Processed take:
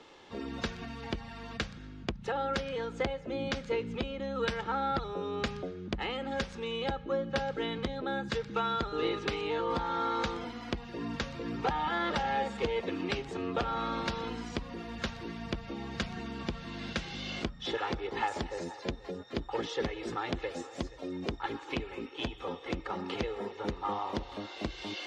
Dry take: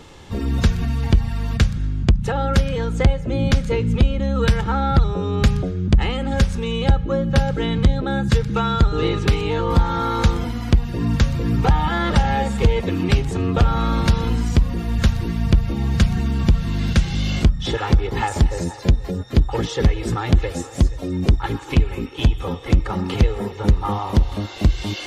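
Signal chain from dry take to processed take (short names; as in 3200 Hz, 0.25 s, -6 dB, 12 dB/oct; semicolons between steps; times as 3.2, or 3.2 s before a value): three-band isolator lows -19 dB, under 250 Hz, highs -21 dB, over 6100 Hz; gain -8.5 dB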